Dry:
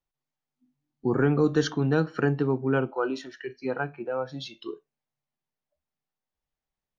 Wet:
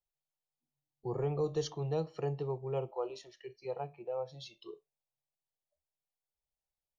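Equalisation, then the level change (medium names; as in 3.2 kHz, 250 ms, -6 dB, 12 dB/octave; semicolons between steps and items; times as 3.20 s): dynamic bell 3.5 kHz, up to -3 dB, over -49 dBFS, Q 3.2; static phaser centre 630 Hz, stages 4; -6.0 dB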